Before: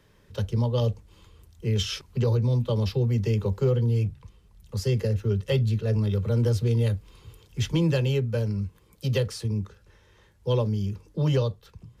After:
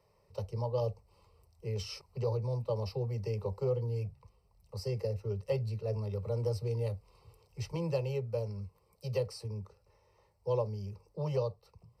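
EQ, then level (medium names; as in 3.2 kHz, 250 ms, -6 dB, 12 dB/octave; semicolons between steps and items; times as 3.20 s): boxcar filter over 13 samples; tilt EQ +3 dB/octave; static phaser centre 660 Hz, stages 4; 0.0 dB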